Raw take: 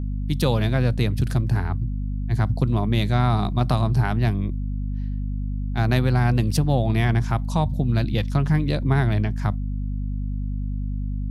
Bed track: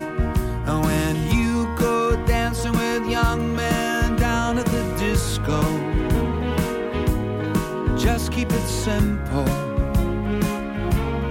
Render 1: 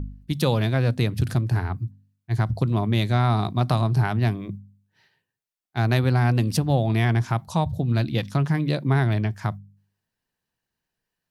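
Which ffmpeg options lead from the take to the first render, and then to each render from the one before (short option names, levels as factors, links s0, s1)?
-af "bandreject=f=50:t=h:w=4,bandreject=f=100:t=h:w=4,bandreject=f=150:t=h:w=4,bandreject=f=200:t=h:w=4,bandreject=f=250:t=h:w=4"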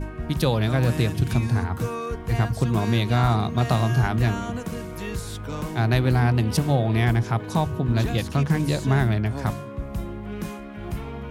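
-filter_complex "[1:a]volume=0.316[s0];[0:a][s0]amix=inputs=2:normalize=0"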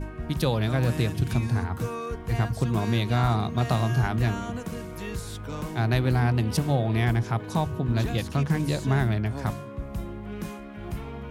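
-af "volume=0.708"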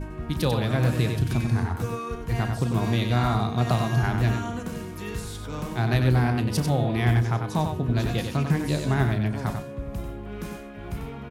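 -filter_complex "[0:a]asplit=2[s0][s1];[s1]adelay=33,volume=0.211[s2];[s0][s2]amix=inputs=2:normalize=0,aecho=1:1:94:0.501"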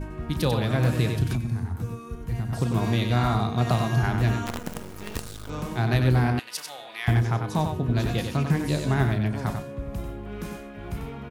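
-filter_complex "[0:a]asettb=1/sr,asplit=3[s0][s1][s2];[s0]atrim=end=1.354[s3];[s1]atrim=start=1.35:end=2.53,asetpts=PTS-STARTPTS,afade=t=in:d=0.004:c=qsin,afade=t=out:st=1.176:d=0.004:c=qsin,acrossover=split=260|7800[s4][s5][s6];[s4]acompressor=threshold=0.0631:ratio=4[s7];[s5]acompressor=threshold=0.00631:ratio=4[s8];[s6]acompressor=threshold=0.00126:ratio=4[s9];[s7][s8][s9]amix=inputs=3:normalize=0[s10];[s2]atrim=start=2.526[s11];[s3][s10]acrossfade=d=0.004:c1=hsin:c2=qsin[s12];[s12][s11]acrossfade=d=0.004:c1=qsin:c2=hsin,asettb=1/sr,asplit=3[s13][s14][s15];[s13]atrim=end=4.464[s16];[s14]atrim=start=4.46:end=5.5,asetpts=PTS-STARTPTS,afade=t=in:d=0.004:c=qsin,afade=t=out:st=1.036:d=0.004:c=qsin,acrusher=bits=5:dc=4:mix=0:aa=0.000001[s17];[s15]atrim=start=5.496[s18];[s16][s17]acrossfade=d=0.004:c1=hsin:c2=qsin[s19];[s19][s18]acrossfade=d=0.004:c1=qsin:c2=hsin,asettb=1/sr,asplit=3[s20][s21][s22];[s20]atrim=end=6.394[s23];[s21]atrim=start=6.39:end=7.08,asetpts=PTS-STARTPTS,afade=t=in:d=0.004:c=qsin,afade=t=out:st=0.686:d=0.004:c=qsin,highpass=1400[s24];[s22]atrim=start=7.076[s25];[s23][s24]acrossfade=d=0.004:c1=hsin:c2=qsin[s26];[s26][s25]acrossfade=d=0.004:c1=qsin:c2=hsin"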